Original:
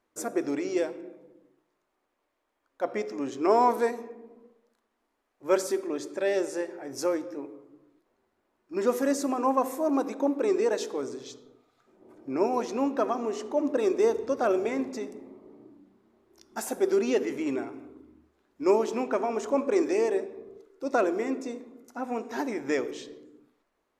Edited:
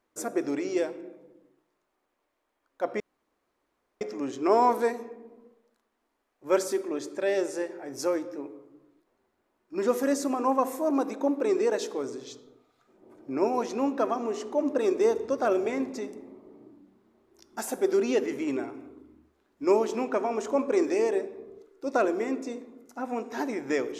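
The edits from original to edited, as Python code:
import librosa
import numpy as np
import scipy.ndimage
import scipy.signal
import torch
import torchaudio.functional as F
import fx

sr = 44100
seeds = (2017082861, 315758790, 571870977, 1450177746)

y = fx.edit(x, sr, fx.insert_room_tone(at_s=3.0, length_s=1.01), tone=tone)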